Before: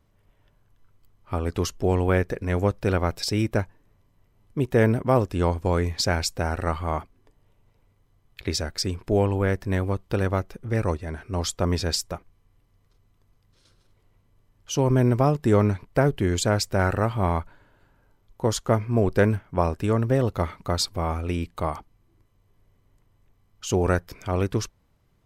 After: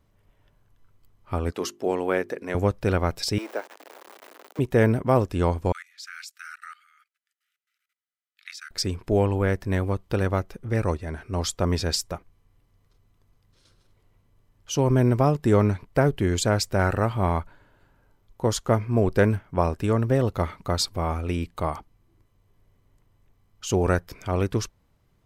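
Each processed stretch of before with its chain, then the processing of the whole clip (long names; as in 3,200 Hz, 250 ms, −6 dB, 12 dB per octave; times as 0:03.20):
0:01.52–0:02.55: Chebyshev high-pass filter 240 Hz + bass and treble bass −6 dB, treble −1 dB + mains-hum notches 50/100/150/200/250/300/350/400 Hz
0:03.38–0:04.59: converter with a step at zero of −29 dBFS + Bessel high-pass filter 570 Hz, order 8 + de-essing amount 95%
0:05.72–0:08.71: linear-phase brick-wall high-pass 1,200 Hz + output level in coarse steps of 20 dB
whole clip: no processing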